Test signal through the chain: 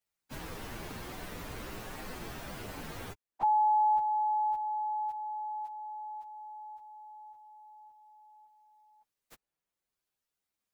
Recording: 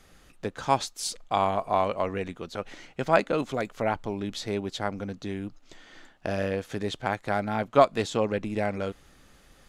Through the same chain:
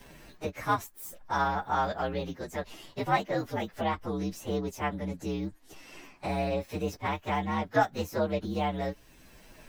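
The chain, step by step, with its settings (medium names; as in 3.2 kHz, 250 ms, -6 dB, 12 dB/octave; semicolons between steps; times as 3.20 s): frequency axis rescaled in octaves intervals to 119%; dynamic bell 7.4 kHz, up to -6 dB, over -53 dBFS, Q 0.79; three bands compressed up and down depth 40%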